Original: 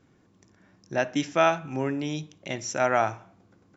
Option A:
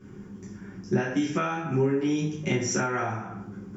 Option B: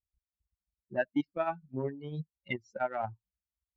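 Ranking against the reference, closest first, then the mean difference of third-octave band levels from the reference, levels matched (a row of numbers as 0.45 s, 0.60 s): A, B; 6.5 dB, 10.0 dB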